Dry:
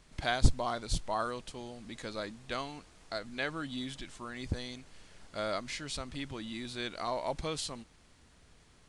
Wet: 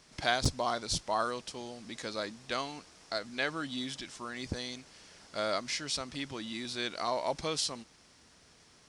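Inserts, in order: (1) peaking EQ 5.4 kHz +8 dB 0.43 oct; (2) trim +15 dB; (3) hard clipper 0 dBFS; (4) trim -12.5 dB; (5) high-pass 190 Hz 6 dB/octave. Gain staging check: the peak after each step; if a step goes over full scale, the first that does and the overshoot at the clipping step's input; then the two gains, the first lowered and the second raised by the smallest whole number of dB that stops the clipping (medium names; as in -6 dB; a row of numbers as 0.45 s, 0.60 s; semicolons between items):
-10.0 dBFS, +5.0 dBFS, 0.0 dBFS, -12.5 dBFS, -11.5 dBFS; step 2, 5.0 dB; step 2 +10 dB, step 4 -7.5 dB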